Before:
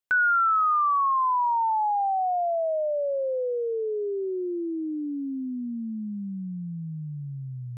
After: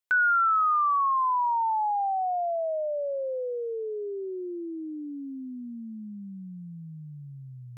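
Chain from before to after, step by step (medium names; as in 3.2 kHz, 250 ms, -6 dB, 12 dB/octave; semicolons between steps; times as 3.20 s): bass shelf 480 Hz -8 dB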